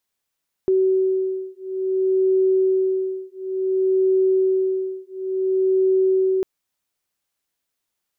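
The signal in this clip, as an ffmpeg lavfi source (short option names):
-f lavfi -i "aevalsrc='0.1*(sin(2*PI*378*t)+sin(2*PI*378.57*t))':d=5.75:s=44100"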